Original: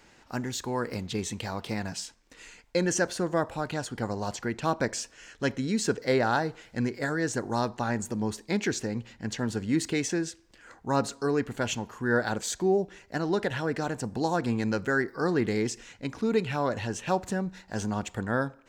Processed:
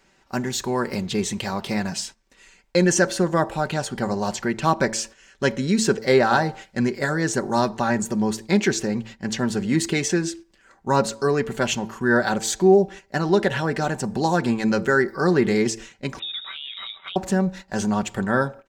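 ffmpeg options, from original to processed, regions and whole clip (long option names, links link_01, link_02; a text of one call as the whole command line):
ffmpeg -i in.wav -filter_complex "[0:a]asettb=1/sr,asplit=3[link_01][link_02][link_03];[link_01]atrim=end=16.194[link_04];[link_02]atrim=start=16.19:end=17.16,asetpts=PTS-STARTPTS,afade=type=in:duration=0.004:curve=qsin,afade=type=out:start_time=0.966:duration=0.004:curve=qsin,lowpass=frequency=3300:width_type=q:width=0.5098,lowpass=frequency=3300:width_type=q:width=0.6013,lowpass=frequency=3300:width_type=q:width=0.9,lowpass=frequency=3300:width_type=q:width=2.563,afreqshift=-3900,tremolo=f=83:d=0.519,acompressor=threshold=-37dB:ratio=8:attack=3.2:release=140:knee=1:detection=peak[link_05];[link_03]atrim=start=17.156[link_06];[link_04][link_05]acrossfade=duration=0.004:curve1=hsin:curve2=qsin[link_07];[link_07][link_06]acrossfade=duration=0.004:curve1=qsin:curve2=hsin,bandreject=frequency=111.4:width_type=h:width=4,bandreject=frequency=222.8:width_type=h:width=4,bandreject=frequency=334.2:width_type=h:width=4,bandreject=frequency=445.6:width_type=h:width=4,bandreject=frequency=557:width_type=h:width=4,bandreject=frequency=668.4:width_type=h:width=4,bandreject=frequency=779.8:width_type=h:width=4,bandreject=frequency=891.2:width_type=h:width=4,agate=range=-10dB:threshold=-45dB:ratio=16:detection=peak,aecho=1:1:5.2:0.47,volume=6.5dB" out.wav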